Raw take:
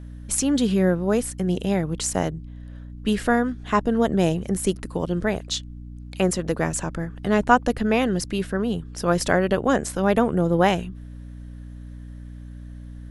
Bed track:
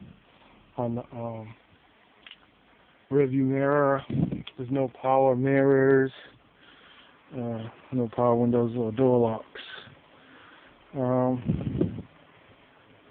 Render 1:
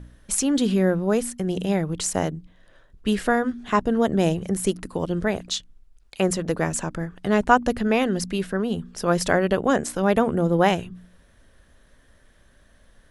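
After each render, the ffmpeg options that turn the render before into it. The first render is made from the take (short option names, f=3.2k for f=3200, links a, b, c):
-af "bandreject=f=60:t=h:w=4,bandreject=f=120:t=h:w=4,bandreject=f=180:t=h:w=4,bandreject=f=240:t=h:w=4,bandreject=f=300:t=h:w=4"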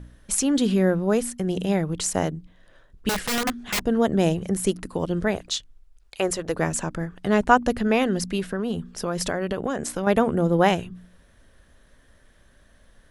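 -filter_complex "[0:a]asettb=1/sr,asplit=3[a][b][c];[a]atrim=end=3.094[d];[b]atrim=start=3.09:end=3.81,asetpts=PTS-STARTPTS,afade=t=in:d=0.004:c=qsin,afade=t=out:st=0.716:d=0.004:c=qsin,aeval=exprs='(mod(8.91*val(0)+1,2)-1)/8.91':c=same[e];[c]atrim=start=3.806[f];[d][e]acrossfade=d=0.004:c1=hsin:c2=qsin[g];[g][f]acrossfade=d=0.004:c1=qsin:c2=hsin,asettb=1/sr,asplit=3[h][i][j];[h]atrim=end=5.354[k];[i]atrim=start=5.35:end=6.56,asetpts=PTS-STARTPTS,afade=t=in:d=0.004:c=qsin,afade=t=out:st=1.206:d=0.004:c=qsin,equalizer=f=200:t=o:w=0.79:g=-11.5[l];[j]atrim=start=6.556[m];[k][l]acrossfade=d=0.004:c1=hsin:c2=qsin[n];[n][m]acrossfade=d=0.004:c1=qsin:c2=hsin,asettb=1/sr,asplit=3[o][p][q];[o]atrim=end=8.394[r];[p]atrim=start=8.39:end=10.07,asetpts=PTS-STARTPTS,afade=t=in:d=0.004:c=qsin,afade=t=out:st=1.676:d=0.004:c=qsin,acompressor=threshold=-21dB:ratio=6:attack=3.2:release=140:knee=1:detection=peak[s];[q]atrim=start=10.066[t];[r][s]acrossfade=d=0.004:c1=hsin:c2=qsin[u];[u][t]acrossfade=d=0.004:c1=qsin:c2=hsin"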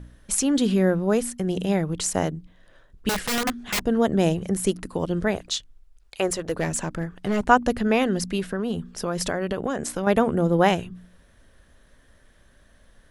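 -filter_complex "[0:a]asettb=1/sr,asplit=3[a][b][c];[a]atrim=end=6.274[d];[b]atrim=start=6.27:end=7.45,asetpts=PTS-STARTPTS,afade=t=in:d=0.004:c=qsin,afade=t=out:st=1.176:d=0.004:c=qsin,asoftclip=type=hard:threshold=-18.5dB[e];[c]atrim=start=7.446[f];[d][e]acrossfade=d=0.004:c1=hsin:c2=qsin[g];[g][f]acrossfade=d=0.004:c1=qsin:c2=hsin"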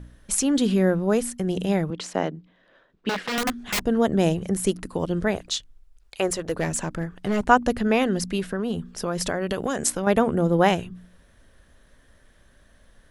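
-filter_complex "[0:a]asettb=1/sr,asplit=3[a][b][c];[a]atrim=end=1.904[d];[b]atrim=start=1.9:end=3.38,asetpts=PTS-STARTPTS,afade=t=in:d=0.004:c=qsin,afade=t=out:st=1.476:d=0.004:c=qsin,acrossover=split=160 4800:gain=0.0794 1 0.1[e][f][g];[e][f][g]amix=inputs=3:normalize=0[h];[c]atrim=start=3.376[i];[d][h]acrossfade=d=0.004:c1=hsin:c2=qsin[j];[j][i]acrossfade=d=0.004:c1=qsin:c2=hsin,asettb=1/sr,asplit=3[k][l][m];[k]atrim=end=9.494[n];[l]atrim=start=9.49:end=9.9,asetpts=PTS-STARTPTS,afade=t=in:d=0.004:c=qsin,afade=t=out:st=0.406:d=0.004:c=qsin,highshelf=f=3.2k:g=10.5[o];[m]atrim=start=9.896[p];[n][o]acrossfade=d=0.004:c1=hsin:c2=qsin[q];[q][p]acrossfade=d=0.004:c1=qsin:c2=hsin"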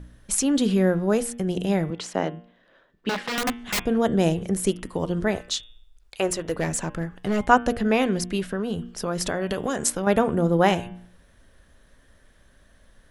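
-af "bandreject=f=117.6:t=h:w=4,bandreject=f=235.2:t=h:w=4,bandreject=f=352.8:t=h:w=4,bandreject=f=470.4:t=h:w=4,bandreject=f=588:t=h:w=4,bandreject=f=705.6:t=h:w=4,bandreject=f=823.2:t=h:w=4,bandreject=f=940.8:t=h:w=4,bandreject=f=1.0584k:t=h:w=4,bandreject=f=1.176k:t=h:w=4,bandreject=f=1.2936k:t=h:w=4,bandreject=f=1.4112k:t=h:w=4,bandreject=f=1.5288k:t=h:w=4,bandreject=f=1.6464k:t=h:w=4,bandreject=f=1.764k:t=h:w=4,bandreject=f=1.8816k:t=h:w=4,bandreject=f=1.9992k:t=h:w=4,bandreject=f=2.1168k:t=h:w=4,bandreject=f=2.2344k:t=h:w=4,bandreject=f=2.352k:t=h:w=4,bandreject=f=2.4696k:t=h:w=4,bandreject=f=2.5872k:t=h:w=4,bandreject=f=2.7048k:t=h:w=4,bandreject=f=2.8224k:t=h:w=4,bandreject=f=2.94k:t=h:w=4,bandreject=f=3.0576k:t=h:w=4,bandreject=f=3.1752k:t=h:w=4,bandreject=f=3.2928k:t=h:w=4,bandreject=f=3.4104k:t=h:w=4,bandreject=f=3.528k:t=h:w=4,bandreject=f=3.6456k:t=h:w=4"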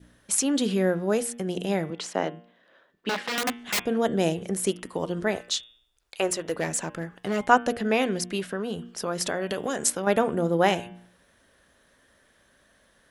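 -af "highpass=f=300:p=1,adynamicequalizer=threshold=0.00891:dfrequency=1100:dqfactor=1.7:tfrequency=1100:tqfactor=1.7:attack=5:release=100:ratio=0.375:range=2:mode=cutabove:tftype=bell"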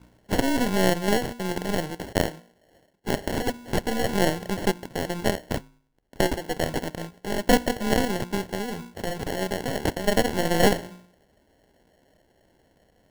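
-af "acrusher=samples=36:mix=1:aa=0.000001,aeval=exprs='0.473*(cos(1*acos(clip(val(0)/0.473,-1,1)))-cos(1*PI/2))+0.106*(cos(6*acos(clip(val(0)/0.473,-1,1)))-cos(6*PI/2))':c=same"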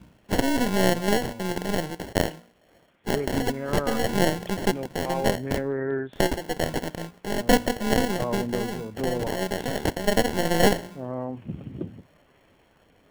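-filter_complex "[1:a]volume=-7.5dB[a];[0:a][a]amix=inputs=2:normalize=0"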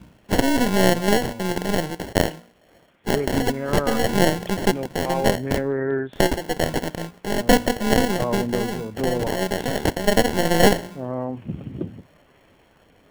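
-af "volume=4dB,alimiter=limit=-2dB:level=0:latency=1"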